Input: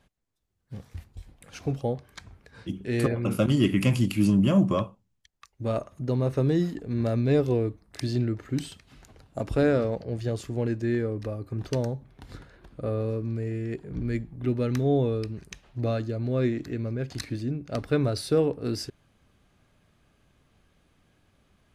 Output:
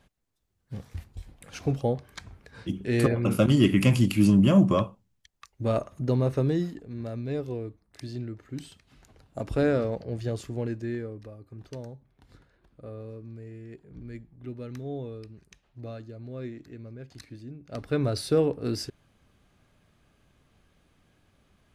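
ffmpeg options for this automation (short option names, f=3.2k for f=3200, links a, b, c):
-af "volume=21.5dB,afade=t=out:st=6.09:d=0.83:silence=0.281838,afade=t=in:st=8.48:d=1.14:silence=0.421697,afade=t=out:st=10.38:d=0.93:silence=0.298538,afade=t=in:st=17.57:d=0.57:silence=0.251189"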